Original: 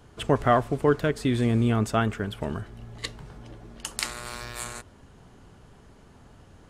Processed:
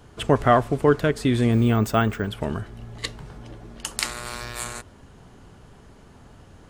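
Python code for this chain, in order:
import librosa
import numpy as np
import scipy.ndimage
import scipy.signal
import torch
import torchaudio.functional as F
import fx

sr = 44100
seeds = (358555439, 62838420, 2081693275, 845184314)

y = fx.resample_bad(x, sr, factor=2, down='filtered', up='hold', at=(1.52, 2.28))
y = F.gain(torch.from_numpy(y), 3.5).numpy()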